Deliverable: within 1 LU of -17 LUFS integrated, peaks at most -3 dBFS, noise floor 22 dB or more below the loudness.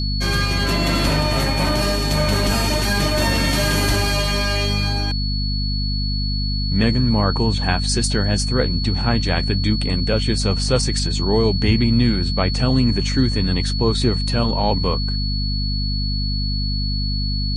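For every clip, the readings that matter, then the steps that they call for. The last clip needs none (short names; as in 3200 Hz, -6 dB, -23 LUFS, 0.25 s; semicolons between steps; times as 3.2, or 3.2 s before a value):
hum 50 Hz; harmonics up to 250 Hz; hum level -19 dBFS; steady tone 4400 Hz; tone level -26 dBFS; loudness -19.5 LUFS; peak -3.0 dBFS; loudness target -17.0 LUFS
-> notches 50/100/150/200/250 Hz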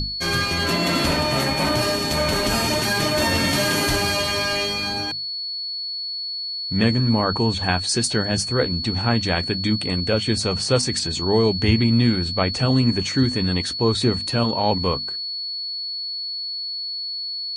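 hum none; steady tone 4400 Hz; tone level -26 dBFS
-> notch 4400 Hz, Q 30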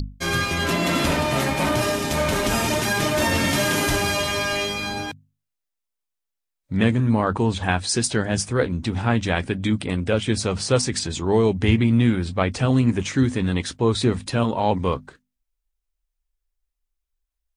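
steady tone none; loudness -22.0 LUFS; peak -5.0 dBFS; loudness target -17.0 LUFS
-> gain +5 dB; limiter -3 dBFS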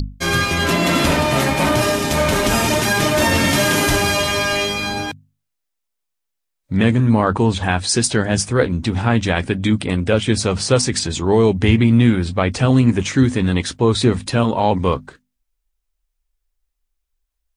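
loudness -17.0 LUFS; peak -3.0 dBFS; noise floor -77 dBFS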